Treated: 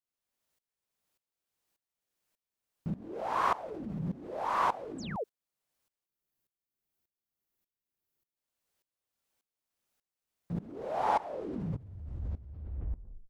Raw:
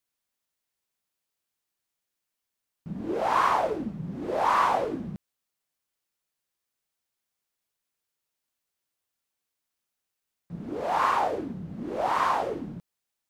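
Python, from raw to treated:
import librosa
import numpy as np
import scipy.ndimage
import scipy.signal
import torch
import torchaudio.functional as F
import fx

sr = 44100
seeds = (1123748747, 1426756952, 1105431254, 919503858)

p1 = fx.tape_stop_end(x, sr, length_s=2.72)
p2 = fx.spec_paint(p1, sr, seeds[0], shape='fall', start_s=4.98, length_s=0.26, low_hz=380.0, high_hz=8500.0, level_db=-40.0)
p3 = fx.low_shelf(p2, sr, hz=210.0, db=4.5)
p4 = fx.spec_box(p3, sr, start_s=6.05, length_s=2.31, low_hz=420.0, high_hz=11000.0, gain_db=-7)
p5 = fx.over_compress(p4, sr, threshold_db=-36.0, ratio=-1.0)
p6 = p4 + (p5 * librosa.db_to_amplitude(0.0))
p7 = fx.peak_eq(p6, sr, hz=560.0, db=4.0, octaves=1.5)
p8 = fx.tremolo_decay(p7, sr, direction='swelling', hz=1.7, depth_db=19)
y = p8 * librosa.db_to_amplitude(-5.5)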